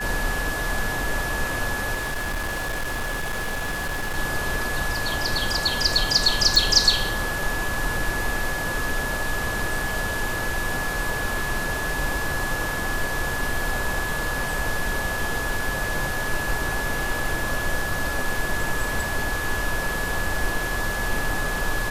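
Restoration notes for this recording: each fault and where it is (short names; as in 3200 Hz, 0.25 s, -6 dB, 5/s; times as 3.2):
tone 1700 Hz -28 dBFS
1.94–4.19 clipped -23.5 dBFS
6.56 pop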